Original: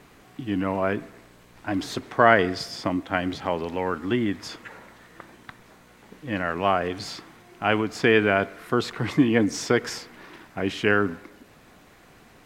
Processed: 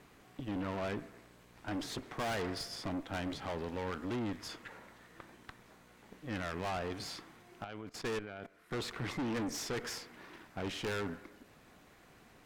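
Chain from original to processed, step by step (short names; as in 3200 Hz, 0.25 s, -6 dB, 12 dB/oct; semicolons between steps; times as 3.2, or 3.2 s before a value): 7.64–8.71 level quantiser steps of 19 dB; tube stage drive 29 dB, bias 0.65; gain -4.5 dB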